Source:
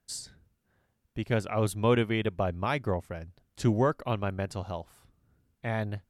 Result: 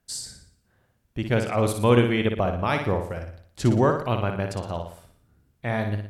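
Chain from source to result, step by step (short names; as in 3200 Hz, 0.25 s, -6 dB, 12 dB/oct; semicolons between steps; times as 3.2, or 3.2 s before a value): flutter echo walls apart 10 m, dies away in 0.55 s; gain +4.5 dB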